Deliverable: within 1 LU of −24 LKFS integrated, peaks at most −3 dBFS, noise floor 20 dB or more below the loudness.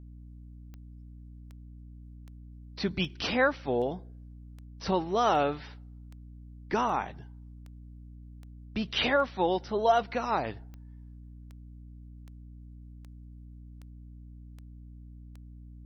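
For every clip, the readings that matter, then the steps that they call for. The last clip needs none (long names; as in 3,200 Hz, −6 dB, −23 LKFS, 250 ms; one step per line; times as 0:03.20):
number of clicks 20; mains hum 60 Hz; hum harmonics up to 300 Hz; level of the hum −45 dBFS; integrated loudness −29.0 LKFS; sample peak −13.0 dBFS; target loudness −24.0 LKFS
→ click removal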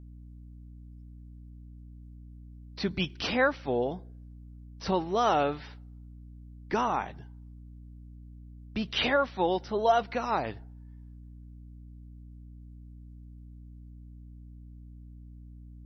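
number of clicks 0; mains hum 60 Hz; hum harmonics up to 300 Hz; level of the hum −45 dBFS
→ hum removal 60 Hz, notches 5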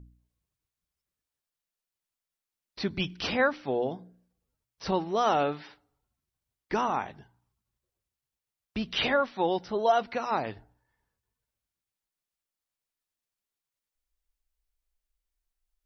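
mains hum none found; integrated loudness −29.0 LKFS; sample peak −12.5 dBFS; target loudness −24.0 LKFS
→ level +5 dB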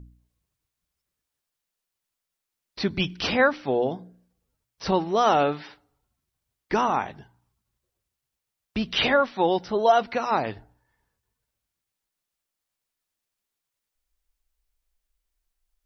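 integrated loudness −24.0 LKFS; sample peak −7.5 dBFS; background noise floor −85 dBFS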